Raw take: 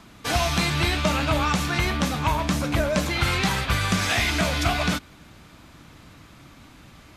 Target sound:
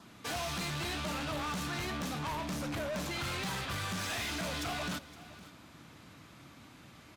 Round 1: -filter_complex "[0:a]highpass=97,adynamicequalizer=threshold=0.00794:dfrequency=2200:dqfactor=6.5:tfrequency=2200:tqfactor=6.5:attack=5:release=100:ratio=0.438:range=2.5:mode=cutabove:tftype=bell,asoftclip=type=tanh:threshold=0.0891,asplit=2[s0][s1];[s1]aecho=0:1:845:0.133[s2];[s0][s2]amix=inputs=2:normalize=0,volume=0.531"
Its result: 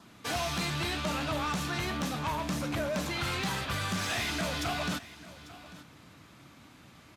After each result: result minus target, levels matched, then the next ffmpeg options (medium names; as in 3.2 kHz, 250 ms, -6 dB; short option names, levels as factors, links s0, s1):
echo 331 ms late; saturation: distortion -6 dB
-filter_complex "[0:a]highpass=97,adynamicequalizer=threshold=0.00794:dfrequency=2200:dqfactor=6.5:tfrequency=2200:tqfactor=6.5:attack=5:release=100:ratio=0.438:range=2.5:mode=cutabove:tftype=bell,asoftclip=type=tanh:threshold=0.0891,asplit=2[s0][s1];[s1]aecho=0:1:514:0.133[s2];[s0][s2]amix=inputs=2:normalize=0,volume=0.531"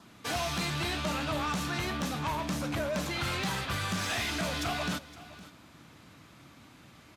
saturation: distortion -6 dB
-filter_complex "[0:a]highpass=97,adynamicequalizer=threshold=0.00794:dfrequency=2200:dqfactor=6.5:tfrequency=2200:tqfactor=6.5:attack=5:release=100:ratio=0.438:range=2.5:mode=cutabove:tftype=bell,asoftclip=type=tanh:threshold=0.0376,asplit=2[s0][s1];[s1]aecho=0:1:514:0.133[s2];[s0][s2]amix=inputs=2:normalize=0,volume=0.531"